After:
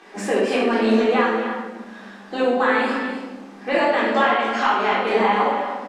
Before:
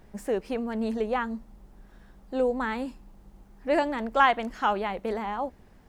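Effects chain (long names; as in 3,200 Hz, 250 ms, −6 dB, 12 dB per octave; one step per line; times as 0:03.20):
sub-octave generator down 1 octave, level 0 dB
elliptic high-pass filter 210 Hz, stop band 40 dB
tilt shelving filter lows −7 dB, about 720 Hz
downward compressor 6 to 1, threshold −32 dBFS, peak gain reduction 18.5 dB
high-frequency loss of the air 80 metres
multi-tap delay 256/289 ms −10.5/−13 dB
rectangular room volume 530 cubic metres, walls mixed, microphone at 3.7 metres
level +8.5 dB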